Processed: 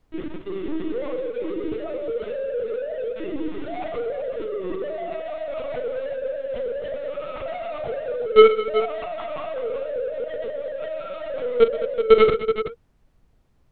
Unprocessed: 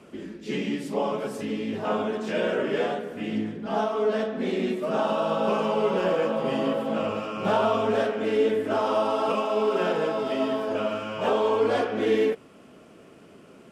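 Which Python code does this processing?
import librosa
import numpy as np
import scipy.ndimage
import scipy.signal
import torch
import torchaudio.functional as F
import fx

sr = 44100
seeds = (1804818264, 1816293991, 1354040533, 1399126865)

p1 = fx.sine_speech(x, sr)
p2 = fx.quant_companded(p1, sr, bits=2)
p3 = fx.small_body(p2, sr, hz=(310.0, 470.0), ring_ms=40, db=7)
p4 = fx.lpc_vocoder(p3, sr, seeds[0], excitation='pitch_kept', order=10)
p5 = p4 + fx.echo_multitap(p4, sr, ms=(41, 126, 213, 378), db=(-11.5, -15.5, -14.0, -10.0), dry=0)
p6 = fx.dmg_noise_colour(p5, sr, seeds[1], colour='brown', level_db=-52.0)
y = F.gain(torch.from_numpy(p6), -6.5).numpy()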